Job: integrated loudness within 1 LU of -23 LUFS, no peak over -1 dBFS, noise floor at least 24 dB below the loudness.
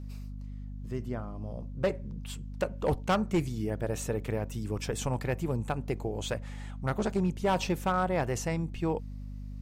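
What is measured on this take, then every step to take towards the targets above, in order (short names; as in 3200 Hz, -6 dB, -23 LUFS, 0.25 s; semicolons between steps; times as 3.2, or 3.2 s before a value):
clipped 0.5%; flat tops at -20.5 dBFS; hum 50 Hz; harmonics up to 250 Hz; hum level -38 dBFS; loudness -32.5 LUFS; peak -20.5 dBFS; loudness target -23.0 LUFS
-> clip repair -20.5 dBFS; de-hum 50 Hz, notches 5; gain +9.5 dB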